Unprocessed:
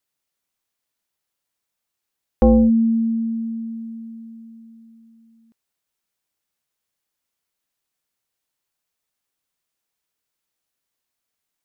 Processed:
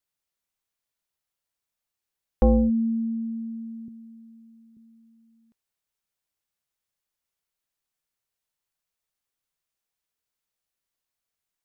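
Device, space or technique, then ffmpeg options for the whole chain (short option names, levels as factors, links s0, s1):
low shelf boost with a cut just above: -filter_complex "[0:a]asettb=1/sr,asplit=3[s0][s1][s2];[s0]atrim=end=3.884[s3];[s1]atrim=start=3.88:end=4.77,asetpts=PTS-STARTPTS,afade=t=in:d=0.004:c=qsin,afade=t=out:st=0.886:d=0.004:c=qsin,highpass=230[s4];[s2]atrim=start=4.766[s5];[s3][s4]acrossfade=d=0.004:c1=hsin:c2=qsin[s6];[s6][s5]acrossfade=d=0.004:c1=qsin:c2=hsin,lowshelf=f=68:g=7,equalizer=f=270:t=o:w=0.63:g=-3.5,volume=0.531"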